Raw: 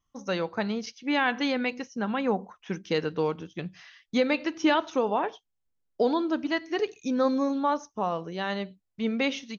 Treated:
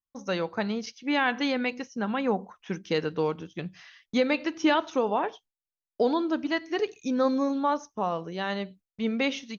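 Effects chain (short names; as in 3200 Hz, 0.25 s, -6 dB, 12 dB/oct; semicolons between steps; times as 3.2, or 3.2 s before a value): gate with hold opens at -46 dBFS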